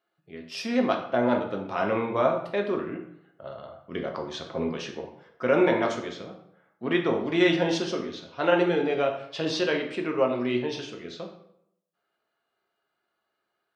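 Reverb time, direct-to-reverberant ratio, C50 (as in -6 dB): 0.75 s, 2.0 dB, 7.5 dB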